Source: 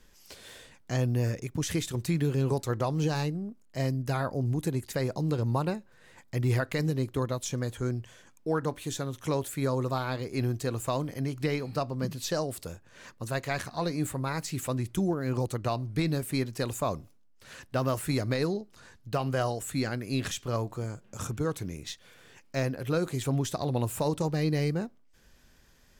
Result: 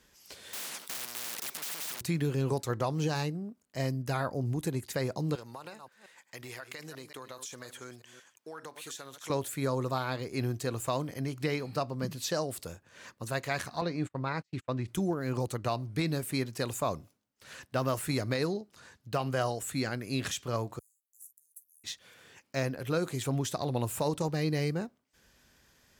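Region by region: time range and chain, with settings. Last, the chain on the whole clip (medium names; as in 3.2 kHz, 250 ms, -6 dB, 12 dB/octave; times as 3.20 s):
0.53–2.01 s: overdrive pedal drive 34 dB, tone 4.7 kHz, clips at -18 dBFS + brick-wall FIR high-pass 160 Hz + spectrum-flattening compressor 10:1
5.35–9.30 s: chunks repeated in reverse 178 ms, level -14 dB + high-pass 1.1 kHz 6 dB/octave + compression 12:1, threshold -37 dBFS
13.81–14.88 s: low-pass 3.9 kHz + gate -36 dBFS, range -38 dB
20.79–21.84 s: inverse Chebyshev high-pass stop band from 2.8 kHz, stop band 70 dB + doubling 15 ms -10 dB
whole clip: high-pass 56 Hz; bass shelf 490 Hz -3.5 dB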